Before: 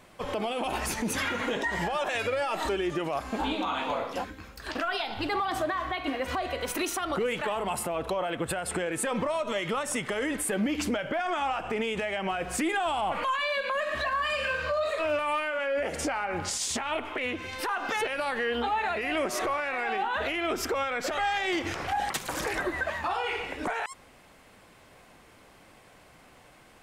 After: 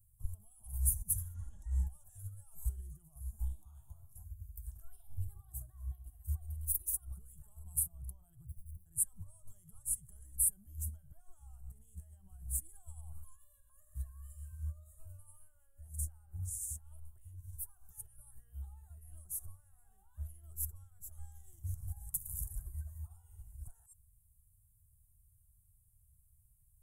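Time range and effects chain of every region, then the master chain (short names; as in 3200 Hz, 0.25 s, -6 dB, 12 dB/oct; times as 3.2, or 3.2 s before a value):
1.34–1.87 air absorption 83 m + comb 3.6 ms, depth 85% + fast leveller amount 50%
8.46–8.86 median filter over 41 samples + ripple EQ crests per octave 0.88, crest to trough 8 dB + compressor 2.5:1, threshold -40 dBFS
whole clip: inverse Chebyshev band-stop 240–4800 Hz, stop band 50 dB; bell 600 Hz +9.5 dB 1.2 oct; upward expander 1.5:1, over -57 dBFS; gain +9.5 dB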